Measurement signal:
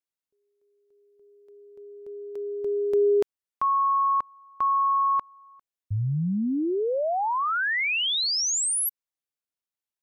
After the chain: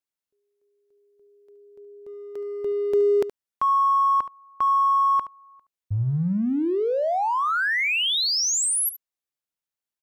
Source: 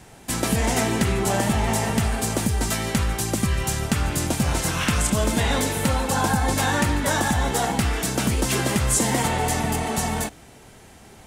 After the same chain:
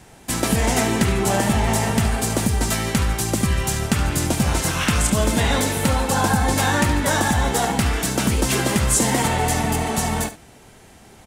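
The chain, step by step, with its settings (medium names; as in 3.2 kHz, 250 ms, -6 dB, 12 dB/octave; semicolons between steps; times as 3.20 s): in parallel at -9 dB: crossover distortion -37.5 dBFS; on the sum: delay 72 ms -14 dB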